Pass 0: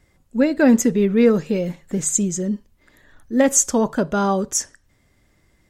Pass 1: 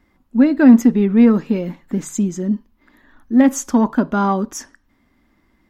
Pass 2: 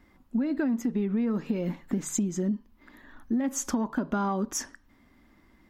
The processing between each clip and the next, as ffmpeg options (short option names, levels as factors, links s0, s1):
-filter_complex "[0:a]equalizer=f=125:t=o:w=1:g=-10,equalizer=f=250:t=o:w=1:g=12,equalizer=f=500:t=o:w=1:g=-6,equalizer=f=1000:t=o:w=1:g=7,equalizer=f=8000:t=o:w=1:g=-12,asplit=2[s0][s1];[s1]asoftclip=type=tanh:threshold=0.335,volume=0.376[s2];[s0][s2]amix=inputs=2:normalize=0,volume=0.668"
-af "alimiter=limit=0.266:level=0:latency=1:release=179,acompressor=threshold=0.0562:ratio=6"